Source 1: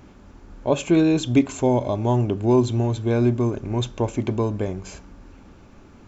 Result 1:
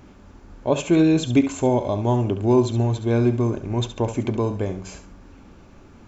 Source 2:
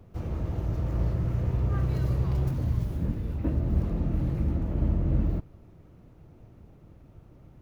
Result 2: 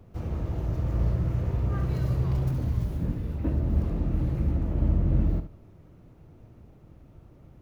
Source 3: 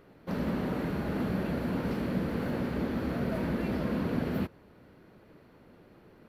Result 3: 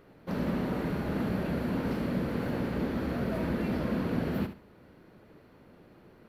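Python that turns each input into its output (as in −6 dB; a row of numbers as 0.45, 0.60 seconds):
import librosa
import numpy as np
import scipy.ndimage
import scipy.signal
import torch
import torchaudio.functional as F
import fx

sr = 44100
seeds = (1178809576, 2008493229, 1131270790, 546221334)

y = fx.echo_feedback(x, sr, ms=69, feedback_pct=22, wet_db=-10.5)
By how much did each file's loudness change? +0.5, +1.0, +0.5 LU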